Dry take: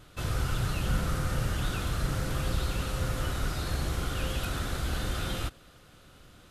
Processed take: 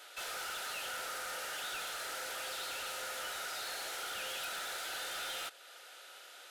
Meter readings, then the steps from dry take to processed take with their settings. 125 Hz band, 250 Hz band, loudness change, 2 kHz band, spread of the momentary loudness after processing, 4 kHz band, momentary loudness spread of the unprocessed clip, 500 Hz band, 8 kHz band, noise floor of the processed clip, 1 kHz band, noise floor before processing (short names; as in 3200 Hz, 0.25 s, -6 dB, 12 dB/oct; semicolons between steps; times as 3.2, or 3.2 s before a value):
-39.0 dB, -25.0 dB, -7.0 dB, -1.5 dB, 12 LU, -1.0 dB, 3 LU, -8.5 dB, -0.5 dB, -54 dBFS, -4.0 dB, -55 dBFS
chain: Bessel high-pass 770 Hz, order 6; in parallel at 0 dB: compressor, threshold -53 dBFS, peak gain reduction 17 dB; on the sum: soft clip -37 dBFS, distortion -12 dB; Butterworth band-stop 1100 Hz, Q 5.1; gain +1 dB